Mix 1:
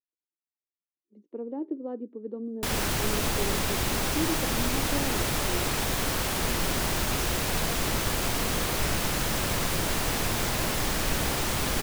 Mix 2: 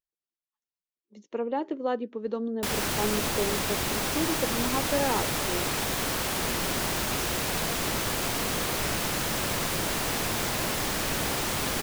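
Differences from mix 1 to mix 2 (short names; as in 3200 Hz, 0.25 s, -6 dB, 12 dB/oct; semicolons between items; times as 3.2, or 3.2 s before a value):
speech: remove band-pass 310 Hz, Q 2.2; master: add low shelf 78 Hz -10.5 dB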